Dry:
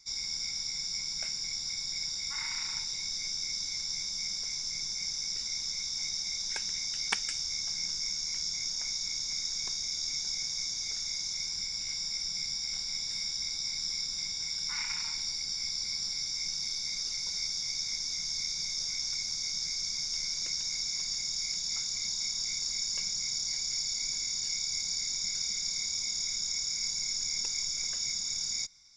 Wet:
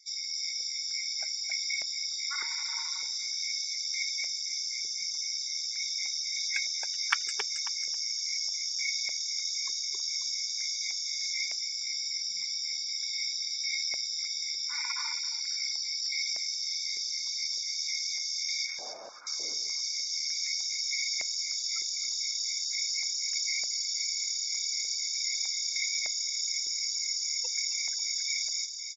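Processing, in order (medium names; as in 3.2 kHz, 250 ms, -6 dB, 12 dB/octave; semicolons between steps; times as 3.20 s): 18.66–19.27 s: one-bit delta coder 16 kbps, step -50.5 dBFS; spectral gate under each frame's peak -20 dB strong; on a send: feedback delay 271 ms, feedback 27%, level -6 dB; on the sum: step-sequenced high-pass 3.3 Hz 400–2100 Hz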